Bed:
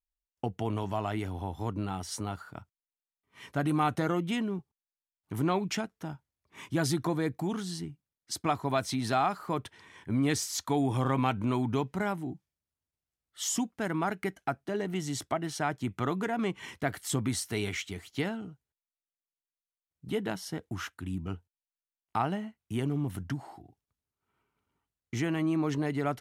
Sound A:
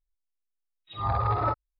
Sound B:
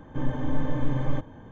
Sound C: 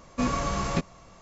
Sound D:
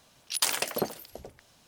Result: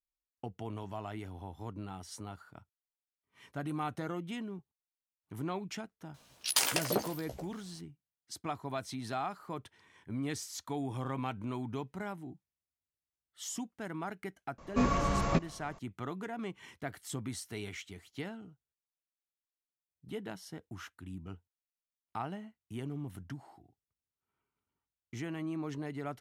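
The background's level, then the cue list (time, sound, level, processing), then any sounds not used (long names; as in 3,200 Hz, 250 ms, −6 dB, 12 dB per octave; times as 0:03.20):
bed −9 dB
0:06.14: mix in D −2.5 dB + double-tracking delay 15 ms −6.5 dB
0:14.58: mix in C −1.5 dB + high-shelf EQ 3,600 Hz −8.5 dB
not used: A, B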